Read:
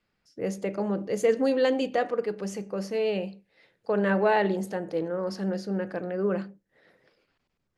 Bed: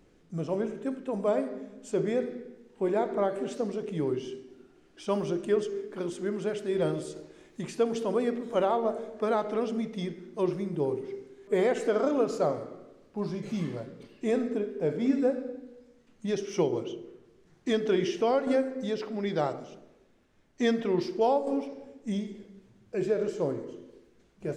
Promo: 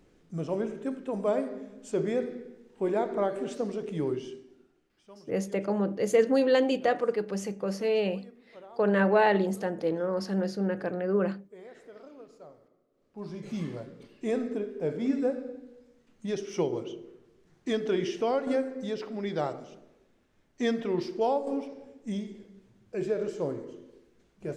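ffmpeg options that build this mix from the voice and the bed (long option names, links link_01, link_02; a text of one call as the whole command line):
ffmpeg -i stem1.wav -i stem2.wav -filter_complex "[0:a]adelay=4900,volume=0.5dB[link_01];[1:a]volume=20.5dB,afade=type=out:start_time=4.07:duration=0.96:silence=0.0749894,afade=type=in:start_time=12.9:duration=0.67:silence=0.0891251[link_02];[link_01][link_02]amix=inputs=2:normalize=0" out.wav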